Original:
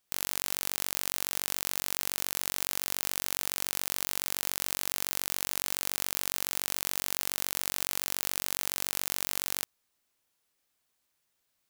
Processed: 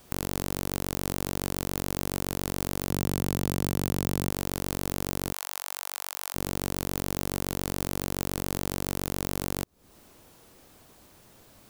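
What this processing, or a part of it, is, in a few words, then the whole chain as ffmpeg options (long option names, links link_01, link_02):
mastering chain: -filter_complex "[0:a]equalizer=frequency=1900:width_type=o:width=0.77:gain=-2,acrossover=split=470|3100[link_01][link_02][link_03];[link_01]acompressor=threshold=-56dB:ratio=4[link_04];[link_02]acompressor=threshold=-58dB:ratio=4[link_05];[link_03]acompressor=threshold=-45dB:ratio=4[link_06];[link_04][link_05][link_06]amix=inputs=3:normalize=0,acompressor=threshold=-54dB:ratio=2,tiltshelf=frequency=970:gain=8.5,alimiter=level_in=35dB:limit=-1dB:release=50:level=0:latency=1,asettb=1/sr,asplit=3[link_07][link_08][link_09];[link_07]atrim=end=2.904[link_10];[link_08]atrim=start=2.9:end=4.3,asetpts=PTS-STARTPTS,afade=type=in:duration=0.004:curve=qsin,afade=type=out:start_time=1.396:duration=0.004:curve=qsin,equalizer=frequency=130:width_type=o:width=2.1:gain=6.5[link_11];[link_09]atrim=start=4.296[link_12];[link_10][link_11]acrossfade=duration=0.004:curve1=hsin:curve2=qsin[link_13];[link_13][link_12]acrossfade=duration=0.004:curve1=qsin:curve2=hsin,asplit=3[link_14][link_15][link_16];[link_14]afade=type=out:start_time=5.32:duration=0.02[link_17];[link_15]highpass=frequency=810:width=0.5412,highpass=frequency=810:width=1.3066,afade=type=in:start_time=5.32:duration=0.02,afade=type=out:start_time=6.34:duration=0.02[link_18];[link_16]afade=type=in:start_time=6.34:duration=0.02[link_19];[link_17][link_18][link_19]amix=inputs=3:normalize=0,volume=-7.5dB"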